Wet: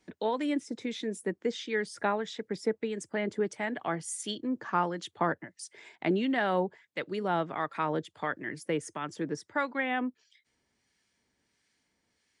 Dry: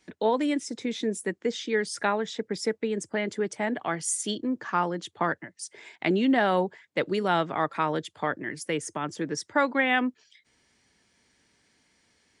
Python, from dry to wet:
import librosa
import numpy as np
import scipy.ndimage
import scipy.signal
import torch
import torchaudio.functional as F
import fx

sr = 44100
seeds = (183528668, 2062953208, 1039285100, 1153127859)

y = fx.dynamic_eq(x, sr, hz=6900.0, q=0.7, threshold_db=-45.0, ratio=4.0, max_db=-5)
y = fx.harmonic_tremolo(y, sr, hz=1.5, depth_pct=50, crossover_hz=1200.0)
y = fx.rider(y, sr, range_db=10, speed_s=2.0)
y = F.gain(torch.from_numpy(y), -2.5).numpy()